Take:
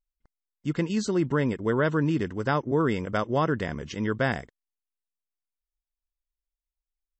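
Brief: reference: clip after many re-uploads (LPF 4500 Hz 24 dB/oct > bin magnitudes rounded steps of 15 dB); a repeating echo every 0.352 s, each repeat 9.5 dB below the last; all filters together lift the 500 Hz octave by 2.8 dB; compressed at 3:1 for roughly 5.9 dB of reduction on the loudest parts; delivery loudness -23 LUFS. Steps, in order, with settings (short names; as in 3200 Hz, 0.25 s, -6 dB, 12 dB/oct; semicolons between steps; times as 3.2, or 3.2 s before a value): bell 500 Hz +3.5 dB; compressor 3:1, threshold -26 dBFS; LPF 4500 Hz 24 dB/oct; feedback echo 0.352 s, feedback 33%, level -9.5 dB; bin magnitudes rounded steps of 15 dB; gain +7.5 dB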